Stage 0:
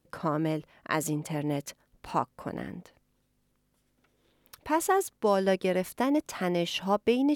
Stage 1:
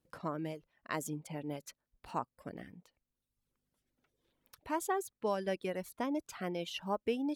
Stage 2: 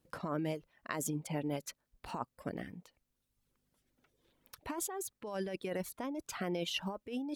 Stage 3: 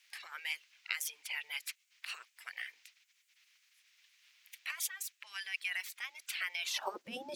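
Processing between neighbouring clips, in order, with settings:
reverb removal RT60 1 s; trim -8.5 dB
compressor with a negative ratio -39 dBFS, ratio -1; trim +2 dB
band noise 720–6300 Hz -78 dBFS; spectral gate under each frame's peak -10 dB weak; high-pass sweep 2.2 kHz -> 140 Hz, 6.55–7.18 s; trim +6.5 dB

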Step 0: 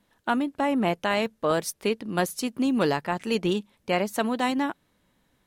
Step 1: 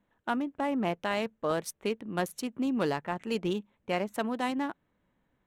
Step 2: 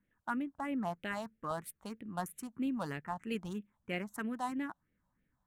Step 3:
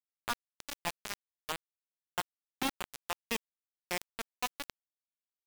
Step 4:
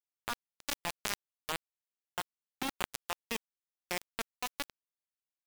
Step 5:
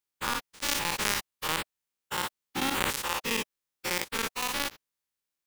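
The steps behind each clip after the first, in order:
local Wiener filter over 9 samples; trim -5.5 dB
phase shifter stages 4, 3.1 Hz, lowest notch 370–1000 Hz; trim -3.5 dB
bit crusher 5-bit; trim +1 dB
level held to a coarse grid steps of 23 dB; trim +11.5 dB
every event in the spectrogram widened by 120 ms; Butterworth band-stop 680 Hz, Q 5.2; trim +2.5 dB

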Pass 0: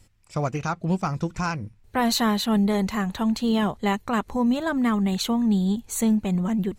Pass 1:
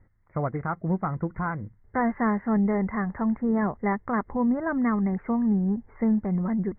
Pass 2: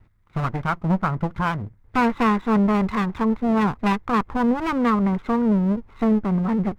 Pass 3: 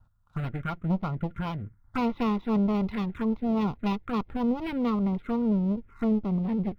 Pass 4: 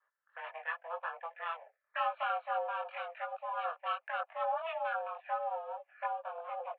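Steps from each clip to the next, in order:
Chebyshev low-pass 2.1 kHz, order 8; trim -1.5 dB
comb filter that takes the minimum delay 0.84 ms; dynamic bell 1 kHz, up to +3 dB, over -37 dBFS, Q 1.1; trim +5 dB
touch-sensitive phaser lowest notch 360 Hz, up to 1.6 kHz, full sweep at -18 dBFS; small resonant body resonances 1.4 kHz, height 11 dB, ringing for 40 ms; trim -5.5 dB
mistuned SSB +330 Hz 320–2700 Hz; chorus voices 4, 0.84 Hz, delay 21 ms, depth 2.2 ms

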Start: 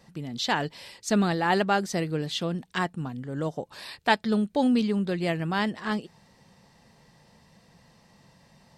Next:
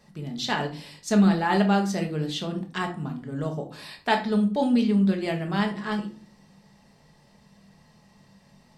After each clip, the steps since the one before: simulated room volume 350 m³, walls furnished, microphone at 1.4 m; trim -2.5 dB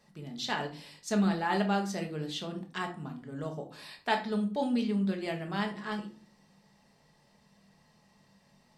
bass shelf 230 Hz -5.5 dB; trim -5.5 dB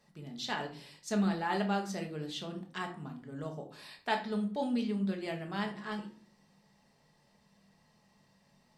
flange 0.59 Hz, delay 6.9 ms, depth 4.3 ms, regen -88%; trim +1.5 dB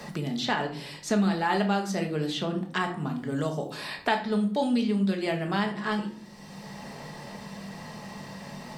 three bands compressed up and down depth 70%; trim +8 dB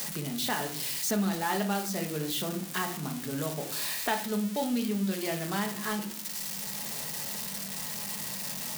zero-crossing glitches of -20.5 dBFS; trim -4.5 dB

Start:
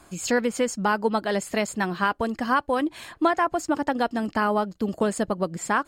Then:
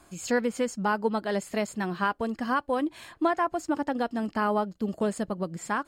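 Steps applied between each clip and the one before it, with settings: harmonic-percussive split harmonic +5 dB; trim -7.5 dB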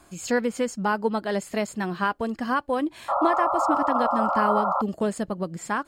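painted sound noise, 3.08–4.82 s, 530–1400 Hz -26 dBFS; trim +2 dB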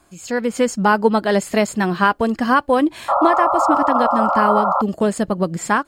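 level rider gain up to 16.5 dB; trim -2 dB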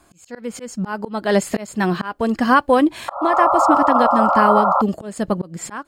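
slow attack 319 ms; trim +1.5 dB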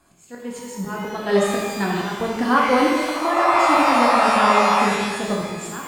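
pitch-shifted reverb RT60 1.3 s, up +12 st, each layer -8 dB, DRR -3 dB; trim -6.5 dB

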